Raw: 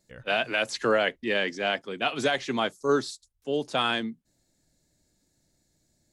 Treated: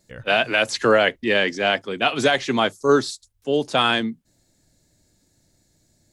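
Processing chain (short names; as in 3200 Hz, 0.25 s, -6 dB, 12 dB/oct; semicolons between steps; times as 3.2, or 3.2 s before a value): bell 100 Hz +6.5 dB 0.28 oct; gain +7 dB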